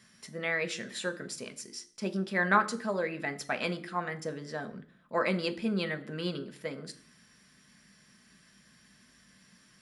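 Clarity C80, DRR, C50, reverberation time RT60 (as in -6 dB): 20.0 dB, 7.0 dB, 16.5 dB, 0.50 s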